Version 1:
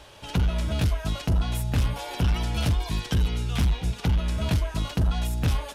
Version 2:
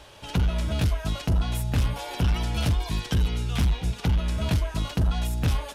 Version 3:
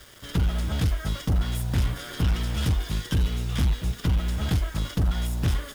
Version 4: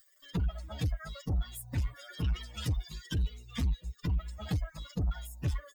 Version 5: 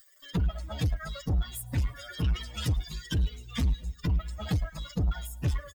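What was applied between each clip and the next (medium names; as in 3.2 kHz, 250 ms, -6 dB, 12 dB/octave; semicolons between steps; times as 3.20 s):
no audible change
comb filter that takes the minimum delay 0.59 ms; bit crusher 8-bit
expander on every frequency bin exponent 3; saturation -24 dBFS, distortion -16 dB; upward compressor, threshold -49 dBFS
in parallel at -9.5 dB: hard clipper -39 dBFS, distortion -5 dB; on the sum: feedback delay 108 ms, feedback 47%, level -23.5 dB; trim +3 dB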